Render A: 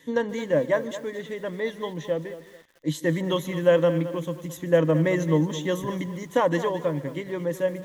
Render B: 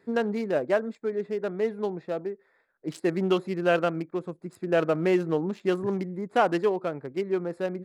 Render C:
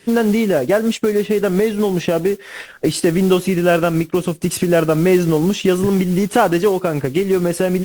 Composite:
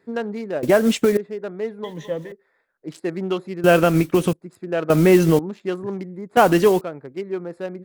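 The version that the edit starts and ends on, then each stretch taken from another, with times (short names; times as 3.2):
B
0.63–1.17 from C
1.84–2.32 from A
3.64–4.33 from C
4.9–5.39 from C
6.37–6.81 from C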